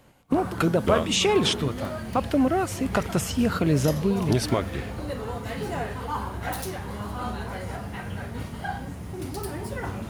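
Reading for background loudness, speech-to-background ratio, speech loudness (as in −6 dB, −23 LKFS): −33.5 LKFS, 9.0 dB, −24.5 LKFS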